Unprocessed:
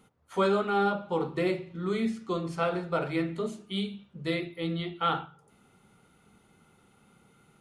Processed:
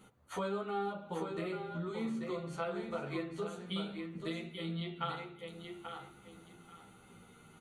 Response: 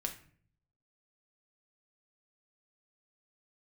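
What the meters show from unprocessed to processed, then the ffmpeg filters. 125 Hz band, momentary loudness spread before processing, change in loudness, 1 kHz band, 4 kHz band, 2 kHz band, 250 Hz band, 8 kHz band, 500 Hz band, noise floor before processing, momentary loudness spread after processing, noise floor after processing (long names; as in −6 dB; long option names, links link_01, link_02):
−7.0 dB, 8 LU, −9.5 dB, −9.5 dB, −7.0 dB, −9.5 dB, −8.0 dB, −3.5 dB, −9.0 dB, −64 dBFS, 18 LU, −60 dBFS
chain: -filter_complex "[0:a]bandreject=frequency=76.29:width_type=h:width=4,bandreject=frequency=152.58:width_type=h:width=4,bandreject=frequency=228.87:width_type=h:width=4,bandreject=frequency=305.16:width_type=h:width=4,bandreject=frequency=381.45:width_type=h:width=4,bandreject=frequency=457.74:width_type=h:width=4,bandreject=frequency=534.03:width_type=h:width=4,acompressor=threshold=-41dB:ratio=4,asuperstop=centerf=5200:order=4:qfactor=7.3,aecho=1:1:837|1674|2511:0.501|0.11|0.0243,asplit=2[link_01][link_02];[link_02]adelay=11.7,afreqshift=-0.34[link_03];[link_01][link_03]amix=inputs=2:normalize=1,volume=5.5dB"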